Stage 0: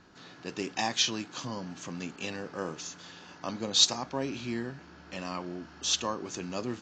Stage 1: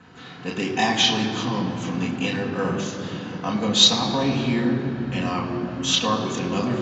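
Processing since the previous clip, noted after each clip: reverb RT60 3.6 s, pre-delay 4 ms, DRR -3 dB; gain -1 dB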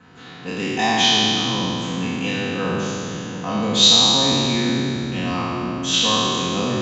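spectral trails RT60 2.56 s; gain -2 dB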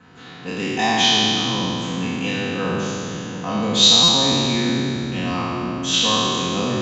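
stuck buffer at 4.03, samples 256, times 8

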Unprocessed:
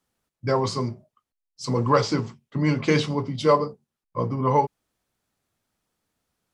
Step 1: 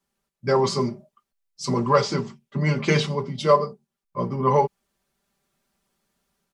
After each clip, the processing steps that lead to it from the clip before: comb 5.1 ms, depth 82%; AGC gain up to 5.5 dB; gain -3.5 dB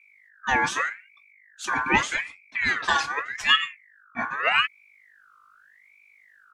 hum 50 Hz, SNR 29 dB; ring modulator with a swept carrier 1800 Hz, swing 30%, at 0.83 Hz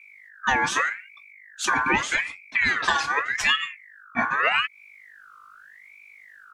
compressor 6:1, threshold -26 dBFS, peak gain reduction 12.5 dB; gain +7.5 dB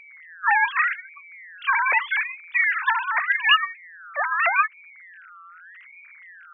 sine-wave speech; gain +2 dB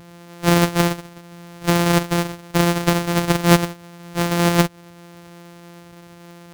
sample sorter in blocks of 256 samples; gain +4 dB

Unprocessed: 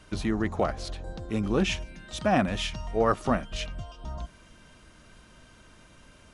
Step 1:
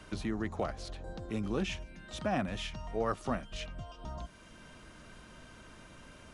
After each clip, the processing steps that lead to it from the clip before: three-band squash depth 40%; gain -7.5 dB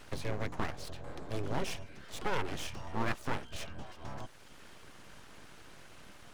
full-wave rectifier; gain +1.5 dB

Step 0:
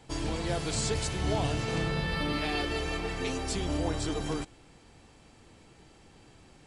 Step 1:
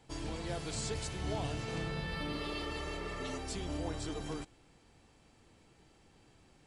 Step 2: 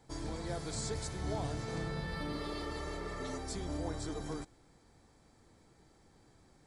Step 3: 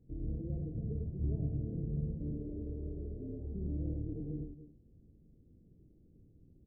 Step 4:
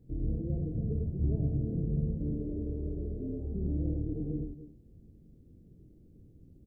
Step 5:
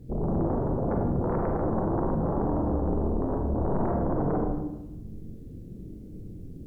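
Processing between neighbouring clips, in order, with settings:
spectral repair 2.36–3.35, 360–2600 Hz before; gain -7.5 dB
bell 2800 Hz -14.5 dB 0.35 oct
Gaussian blur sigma 25 samples; on a send: tapped delay 42/101/275/288 ms -9/-4.5/-16.5/-17.5 dB; on the sum: gain +3.5 dB
doubler 23 ms -14 dB; gain +5.5 dB
sine folder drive 16 dB, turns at -18.5 dBFS; Schroeder reverb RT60 0.96 s, combs from 33 ms, DRR 1.5 dB; gain -7 dB

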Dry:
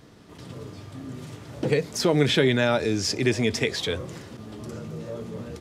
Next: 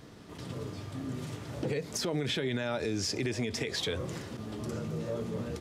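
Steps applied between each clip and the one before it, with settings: compressor 4:1, threshold -27 dBFS, peak gain reduction 10.5 dB; limiter -23 dBFS, peak gain reduction 6.5 dB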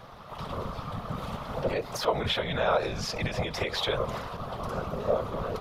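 EQ curve 130 Hz 0 dB, 300 Hz -29 dB, 500 Hz +4 dB, 1200 Hz +10 dB, 1700 Hz -2 dB, 3600 Hz 0 dB, 7900 Hz -13 dB, 12000 Hz -2 dB; whisperiser; gain +5 dB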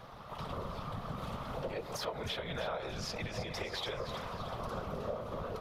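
compressor 4:1, threshold -33 dBFS, peak gain reduction 11.5 dB; split-band echo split 1600 Hz, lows 0.123 s, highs 0.313 s, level -9.5 dB; gain -3.5 dB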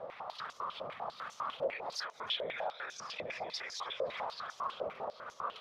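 limiter -36 dBFS, peak gain reduction 10.5 dB; stepped band-pass 10 Hz 570–6200 Hz; gain +15 dB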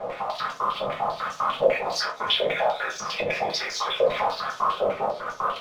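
in parallel at -3.5 dB: crossover distortion -56.5 dBFS; on the sum: reverb, pre-delay 5 ms, DRR -1.5 dB; gain +6 dB

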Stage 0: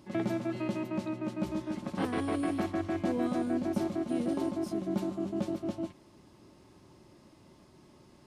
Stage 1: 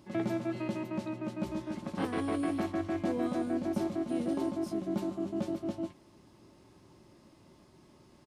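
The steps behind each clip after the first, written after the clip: doubler 18 ms -14 dB; gain -1.5 dB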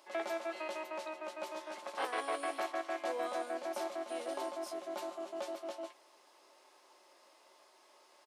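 HPF 540 Hz 24 dB/oct; gain +2.5 dB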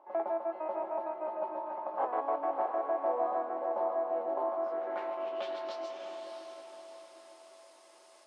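low-pass sweep 870 Hz -> 9200 Hz, 4.36–6.32; diffused feedback echo 0.629 s, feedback 44%, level -5 dB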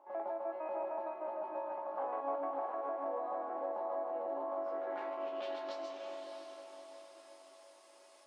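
limiter -28 dBFS, peak gain reduction 8 dB; resonator 280 Hz, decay 0.65 s, mix 80%; gain +9.5 dB

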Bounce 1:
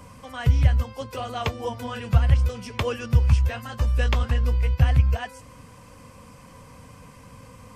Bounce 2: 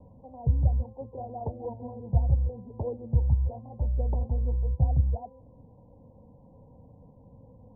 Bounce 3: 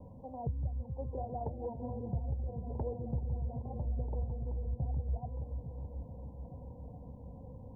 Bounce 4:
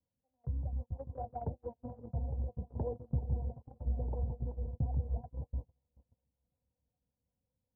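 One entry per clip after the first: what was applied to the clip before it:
steep low-pass 910 Hz 96 dB/oct; gain -5.5 dB
compressor 3:1, threshold -39 dBFS, peak gain reduction 16 dB; repeats that get brighter 0.429 s, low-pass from 200 Hz, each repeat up 1 oct, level -6 dB; gain +1.5 dB
swung echo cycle 0.703 s, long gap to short 3:1, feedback 49%, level -19.5 dB; harmonic tremolo 5.4 Hz, depth 50%, crossover 430 Hz; gate -39 dBFS, range -40 dB; gain +3 dB

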